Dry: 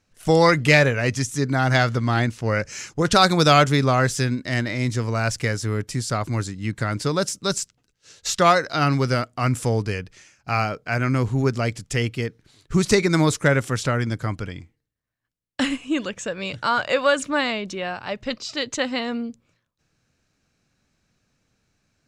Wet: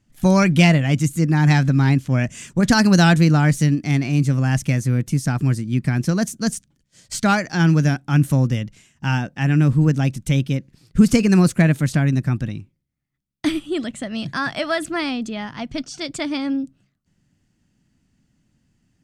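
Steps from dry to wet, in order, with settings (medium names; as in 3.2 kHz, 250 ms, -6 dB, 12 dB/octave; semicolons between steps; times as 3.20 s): tape speed +16%; resonant low shelf 330 Hz +8.5 dB, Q 1.5; trim -2.5 dB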